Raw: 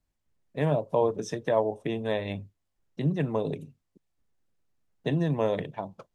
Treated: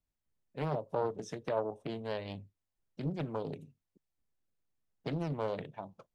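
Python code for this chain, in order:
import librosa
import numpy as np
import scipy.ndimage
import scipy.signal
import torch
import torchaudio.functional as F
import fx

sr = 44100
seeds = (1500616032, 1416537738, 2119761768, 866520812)

y = fx.doppler_dist(x, sr, depth_ms=0.75)
y = y * 10.0 ** (-8.5 / 20.0)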